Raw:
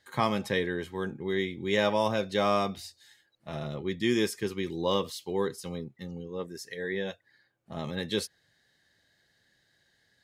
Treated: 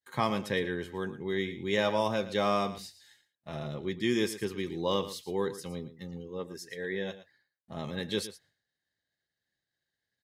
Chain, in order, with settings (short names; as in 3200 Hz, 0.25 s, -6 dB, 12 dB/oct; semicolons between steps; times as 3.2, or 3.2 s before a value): expander -58 dBFS; on a send: echo 0.114 s -14 dB; on the sum: gain -2 dB